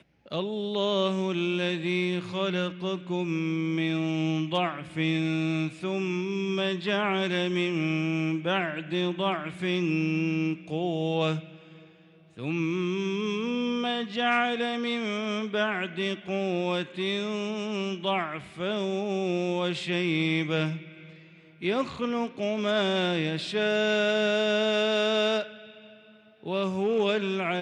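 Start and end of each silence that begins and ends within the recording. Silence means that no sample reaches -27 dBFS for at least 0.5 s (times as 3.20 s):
11.38–12.41 s
20.75–21.63 s
25.42–26.47 s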